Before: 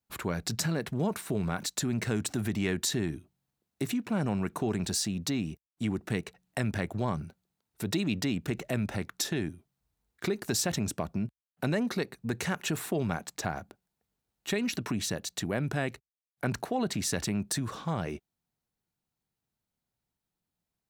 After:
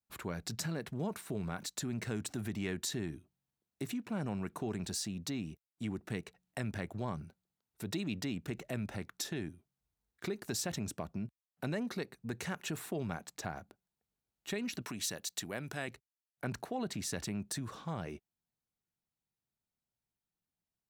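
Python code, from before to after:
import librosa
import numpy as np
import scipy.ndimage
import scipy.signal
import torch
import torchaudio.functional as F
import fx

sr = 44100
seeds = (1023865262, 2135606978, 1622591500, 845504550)

y = fx.tilt_eq(x, sr, slope=2.0, at=(14.82, 15.88))
y = y * 10.0 ** (-7.5 / 20.0)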